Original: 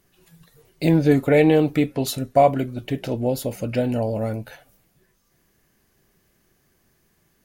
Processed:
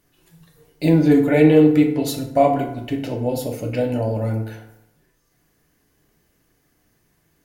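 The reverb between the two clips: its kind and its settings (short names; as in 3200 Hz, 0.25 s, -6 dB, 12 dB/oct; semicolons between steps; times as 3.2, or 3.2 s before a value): FDN reverb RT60 0.83 s, low-frequency decay 0.95×, high-frequency decay 0.55×, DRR 1.5 dB; gain -2 dB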